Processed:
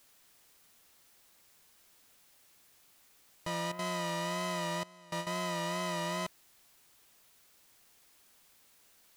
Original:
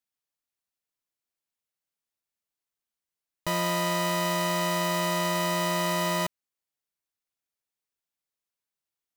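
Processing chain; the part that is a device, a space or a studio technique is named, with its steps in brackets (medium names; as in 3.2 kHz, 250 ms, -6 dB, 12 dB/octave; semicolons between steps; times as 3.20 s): worn cassette (low-pass 9.6 kHz 12 dB/octave; wow and flutter; level dips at 3.72 s, 68 ms -9 dB; white noise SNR 24 dB); 4.83–5.27 s: gate with hold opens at -17 dBFS; trim -8 dB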